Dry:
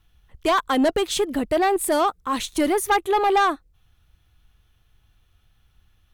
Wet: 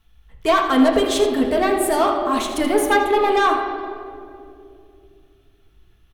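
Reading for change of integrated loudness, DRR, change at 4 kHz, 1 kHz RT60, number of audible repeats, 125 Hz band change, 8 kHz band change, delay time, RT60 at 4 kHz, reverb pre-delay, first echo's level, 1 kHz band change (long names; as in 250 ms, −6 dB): +3.0 dB, −0.5 dB, +2.5 dB, 2.1 s, 1, can't be measured, +0.5 dB, 81 ms, 1.4 s, 4 ms, −9.5 dB, +2.0 dB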